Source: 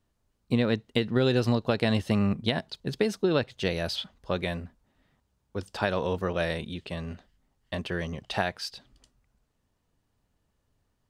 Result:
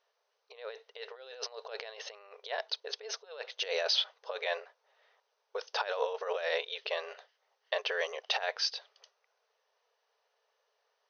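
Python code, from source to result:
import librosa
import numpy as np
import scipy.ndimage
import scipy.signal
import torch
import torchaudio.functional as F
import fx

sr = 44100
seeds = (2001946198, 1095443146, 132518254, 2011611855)

y = fx.over_compress(x, sr, threshold_db=-31.0, ratio=-0.5)
y = fx.brickwall_bandpass(y, sr, low_hz=410.0, high_hz=6400.0)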